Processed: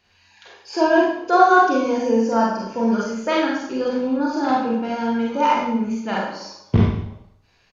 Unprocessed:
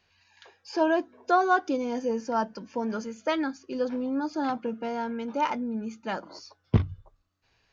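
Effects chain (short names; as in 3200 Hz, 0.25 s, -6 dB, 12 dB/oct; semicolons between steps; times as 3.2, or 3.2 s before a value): downsampling 32000 Hz; Schroeder reverb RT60 0.72 s, combs from 31 ms, DRR -4.5 dB; gain +3.5 dB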